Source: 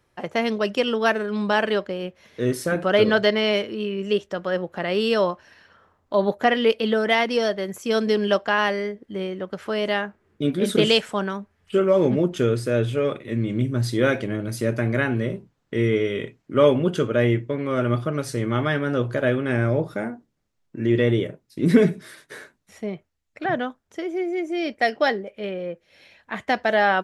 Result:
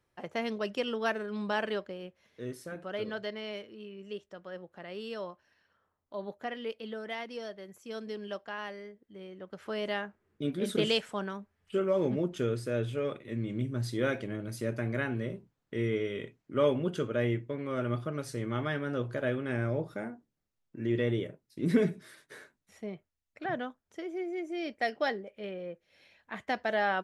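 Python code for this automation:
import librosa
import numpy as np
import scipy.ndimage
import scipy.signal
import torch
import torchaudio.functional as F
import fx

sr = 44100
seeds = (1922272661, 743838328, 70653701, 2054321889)

y = fx.gain(x, sr, db=fx.line((1.68, -10.5), (2.73, -18.5), (9.2, -18.5), (9.7, -10.0)))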